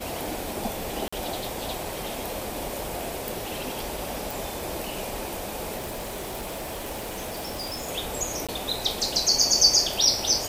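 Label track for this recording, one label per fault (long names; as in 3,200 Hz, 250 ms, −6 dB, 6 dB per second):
1.080000	1.120000	drop-out 45 ms
4.310000	4.310000	click
5.770000	7.890000	clipping −29 dBFS
8.470000	8.490000	drop-out 16 ms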